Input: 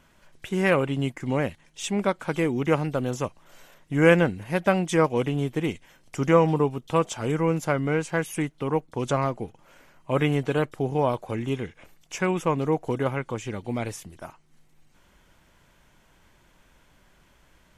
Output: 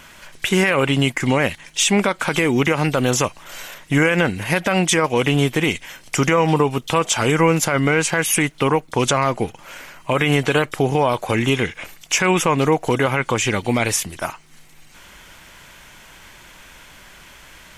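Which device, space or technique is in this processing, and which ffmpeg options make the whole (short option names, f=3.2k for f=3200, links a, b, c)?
mastering chain: -af "equalizer=f=2.3k:t=o:w=0.77:g=2,acompressor=threshold=-25dB:ratio=2,tiltshelf=f=900:g=-5,alimiter=level_in=20.5dB:limit=-1dB:release=50:level=0:latency=1,volume=-5.5dB"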